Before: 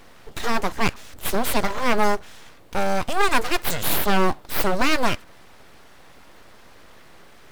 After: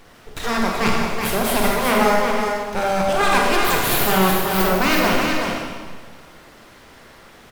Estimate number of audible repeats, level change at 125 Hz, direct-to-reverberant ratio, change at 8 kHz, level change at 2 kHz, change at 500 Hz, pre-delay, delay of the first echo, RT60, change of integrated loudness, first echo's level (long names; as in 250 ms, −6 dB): 1, +5.5 dB, −3.5 dB, +4.5 dB, +5.0 dB, +5.5 dB, 29 ms, 377 ms, 1.6 s, +4.5 dB, −5.0 dB